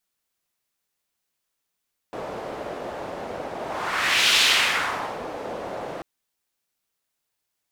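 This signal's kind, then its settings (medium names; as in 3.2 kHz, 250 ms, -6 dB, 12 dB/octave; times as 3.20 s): whoosh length 3.89 s, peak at 2.24 s, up 0.85 s, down 0.94 s, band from 600 Hz, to 3.3 kHz, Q 1.6, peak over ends 15 dB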